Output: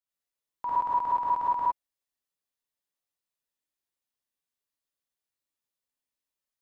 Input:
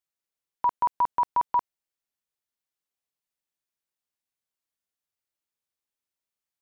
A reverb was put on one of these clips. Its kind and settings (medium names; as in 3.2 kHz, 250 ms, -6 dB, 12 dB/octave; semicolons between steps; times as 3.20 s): gated-style reverb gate 130 ms rising, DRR -7 dB; trim -9 dB